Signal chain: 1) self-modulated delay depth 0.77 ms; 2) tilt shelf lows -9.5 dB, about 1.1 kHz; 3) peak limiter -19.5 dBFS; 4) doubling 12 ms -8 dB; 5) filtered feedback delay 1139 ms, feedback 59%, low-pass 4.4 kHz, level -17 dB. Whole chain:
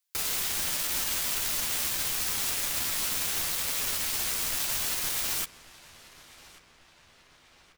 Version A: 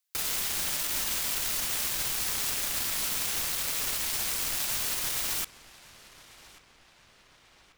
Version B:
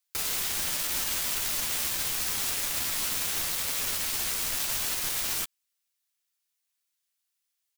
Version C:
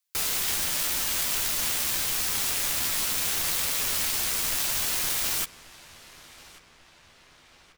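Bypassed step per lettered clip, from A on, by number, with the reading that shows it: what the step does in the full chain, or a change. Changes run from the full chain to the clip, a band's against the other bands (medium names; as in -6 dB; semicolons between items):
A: 4, crest factor change -2.0 dB; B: 5, echo-to-direct -16.0 dB to none; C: 3, mean gain reduction 2.5 dB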